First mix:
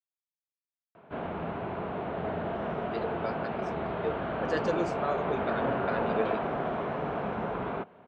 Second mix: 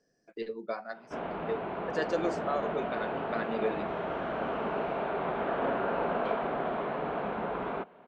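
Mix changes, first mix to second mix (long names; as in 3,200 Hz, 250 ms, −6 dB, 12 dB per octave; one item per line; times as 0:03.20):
speech: entry −2.55 s
master: add parametric band 98 Hz −12 dB 1.2 octaves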